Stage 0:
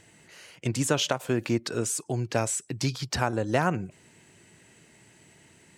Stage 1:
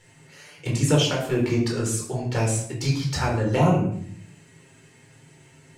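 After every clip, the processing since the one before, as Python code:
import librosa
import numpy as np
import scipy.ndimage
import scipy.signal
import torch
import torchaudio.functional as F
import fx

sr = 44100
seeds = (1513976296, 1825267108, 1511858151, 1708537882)

y = fx.env_flanger(x, sr, rest_ms=8.1, full_db=-20.5)
y = y + 10.0 ** (-16.5 / 20.0) * np.pad(y, (int(107 * sr / 1000.0), 0))[:len(y)]
y = fx.room_shoebox(y, sr, seeds[0], volume_m3=740.0, walls='furnished', distance_m=4.3)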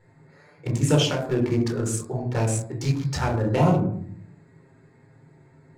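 y = fx.wiener(x, sr, points=15)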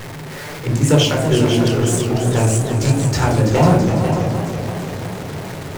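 y = x + 0.5 * 10.0 ** (-31.5 / 20.0) * np.sign(x)
y = y + 10.0 ** (-7.5 / 20.0) * np.pad(y, (int(496 * sr / 1000.0), 0))[:len(y)]
y = fx.echo_warbled(y, sr, ms=333, feedback_pct=70, rate_hz=2.8, cents=111, wet_db=-9)
y = y * librosa.db_to_amplitude(5.5)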